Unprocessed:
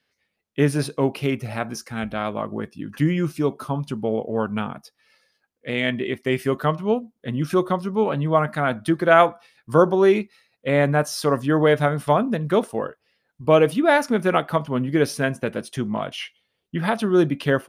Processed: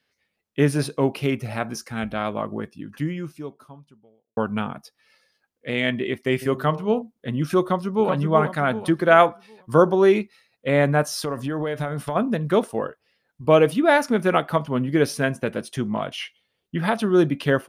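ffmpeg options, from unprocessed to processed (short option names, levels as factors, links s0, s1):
-filter_complex "[0:a]asplit=3[s0][s1][s2];[s0]afade=t=out:st=6.41:d=0.02[s3];[s1]bandreject=f=65.02:t=h:w=4,bandreject=f=130.04:t=h:w=4,bandreject=f=195.06:t=h:w=4,bandreject=f=260.08:t=h:w=4,bandreject=f=325.1:t=h:w=4,bandreject=f=390.12:t=h:w=4,bandreject=f=455.14:t=h:w=4,bandreject=f=520.16:t=h:w=4,bandreject=f=585.18:t=h:w=4,bandreject=f=650.2:t=h:w=4,bandreject=f=715.22:t=h:w=4,bandreject=f=780.24:t=h:w=4,bandreject=f=845.26:t=h:w=4,bandreject=f=910.28:t=h:w=4,bandreject=f=975.3:t=h:w=4,bandreject=f=1040.32:t=h:w=4,afade=t=in:st=6.41:d=0.02,afade=t=out:st=7.01:d=0.02[s4];[s2]afade=t=in:st=7.01:d=0.02[s5];[s3][s4][s5]amix=inputs=3:normalize=0,asplit=2[s6][s7];[s7]afade=t=in:st=7.61:d=0.01,afade=t=out:st=8.09:d=0.01,aecho=0:1:380|760|1140|1520|1900:0.530884|0.212354|0.0849415|0.0339766|0.0135906[s8];[s6][s8]amix=inputs=2:normalize=0,asplit=3[s9][s10][s11];[s9]afade=t=out:st=11.17:d=0.02[s12];[s10]acompressor=threshold=0.0794:ratio=10:attack=3.2:release=140:knee=1:detection=peak,afade=t=in:st=11.17:d=0.02,afade=t=out:st=12.15:d=0.02[s13];[s11]afade=t=in:st=12.15:d=0.02[s14];[s12][s13][s14]amix=inputs=3:normalize=0,asplit=2[s15][s16];[s15]atrim=end=4.37,asetpts=PTS-STARTPTS,afade=t=out:st=2.48:d=1.89:c=qua[s17];[s16]atrim=start=4.37,asetpts=PTS-STARTPTS,afade=t=in:d=0.004:c=hsin[s18];[s17][s18]concat=n=2:v=0:a=1"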